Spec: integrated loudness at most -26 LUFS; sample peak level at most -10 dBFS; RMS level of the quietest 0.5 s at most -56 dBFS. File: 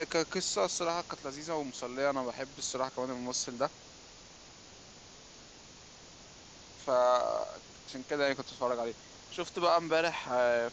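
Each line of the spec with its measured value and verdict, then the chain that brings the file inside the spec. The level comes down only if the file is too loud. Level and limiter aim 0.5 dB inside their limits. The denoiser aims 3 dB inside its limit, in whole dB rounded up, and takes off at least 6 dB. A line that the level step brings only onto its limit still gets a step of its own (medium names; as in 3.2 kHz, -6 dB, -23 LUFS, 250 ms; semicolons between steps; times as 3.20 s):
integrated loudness -33.0 LUFS: pass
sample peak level -15.5 dBFS: pass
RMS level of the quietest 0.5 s -53 dBFS: fail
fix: noise reduction 6 dB, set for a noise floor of -53 dBFS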